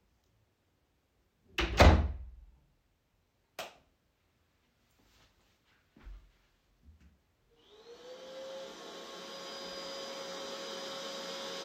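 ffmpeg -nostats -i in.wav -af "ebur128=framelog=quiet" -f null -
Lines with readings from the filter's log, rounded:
Integrated loudness:
  I:         -33.2 LUFS
  Threshold: -46.3 LUFS
Loudness range:
  LRA:        22.6 LU
  Threshold: -58.8 LUFS
  LRA low:   -55.2 LUFS
  LRA high:  -32.6 LUFS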